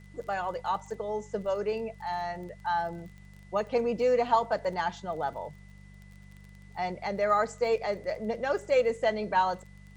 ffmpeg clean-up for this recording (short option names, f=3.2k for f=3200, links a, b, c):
-af "adeclick=t=4,bandreject=f=49:t=h:w=4,bandreject=f=98:t=h:w=4,bandreject=f=147:t=h:w=4,bandreject=f=196:t=h:w=4,bandreject=f=2k:w=30,agate=range=-21dB:threshold=-43dB"